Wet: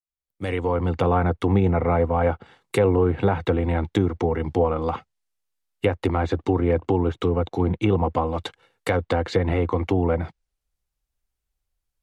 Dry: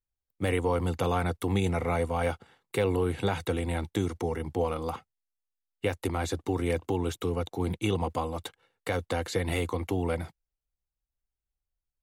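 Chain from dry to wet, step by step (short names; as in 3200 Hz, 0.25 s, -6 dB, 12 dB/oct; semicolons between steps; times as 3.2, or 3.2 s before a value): opening faded in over 1.13 s; treble ducked by the level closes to 1400 Hz, closed at -25 dBFS; gain +8 dB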